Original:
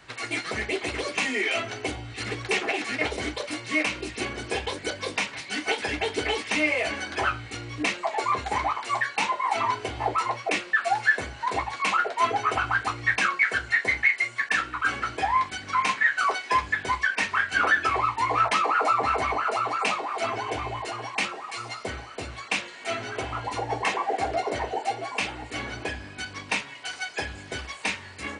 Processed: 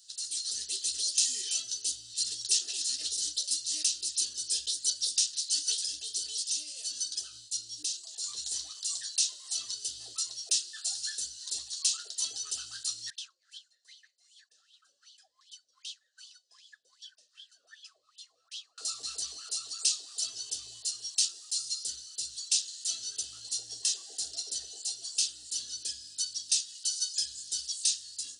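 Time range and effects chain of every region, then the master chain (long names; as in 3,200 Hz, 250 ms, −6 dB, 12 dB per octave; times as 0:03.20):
0:05.84–0:08.24: downward compressor 3 to 1, threshold −28 dBFS + downward expander −36 dBFS + parametric band 2,000 Hz −5.5 dB 0.61 octaves
0:13.10–0:18.78: high-shelf EQ 4,300 Hz +9.5 dB + LFO wah 2.6 Hz 510–3,400 Hz, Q 13
whole clip: inverse Chebyshev high-pass filter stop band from 2,400 Hz, stop band 40 dB; automatic gain control gain up to 5 dB; level +7.5 dB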